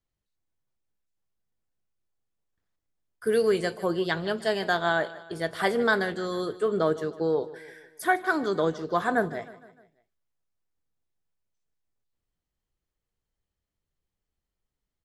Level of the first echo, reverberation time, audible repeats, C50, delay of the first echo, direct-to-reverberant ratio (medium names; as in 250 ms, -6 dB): -17.5 dB, no reverb, 3, no reverb, 153 ms, no reverb